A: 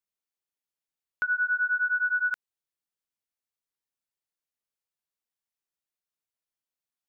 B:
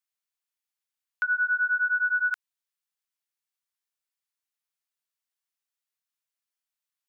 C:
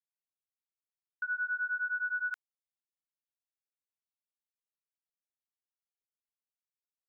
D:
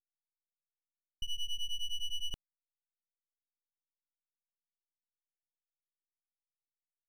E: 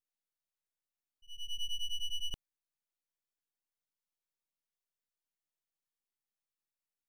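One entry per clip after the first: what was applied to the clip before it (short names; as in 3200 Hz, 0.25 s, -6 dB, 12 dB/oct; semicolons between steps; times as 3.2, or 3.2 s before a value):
HPF 1000 Hz; gain +2 dB
expander -29 dBFS; gain -8.5 dB
full-wave rectifier
auto swell 0.393 s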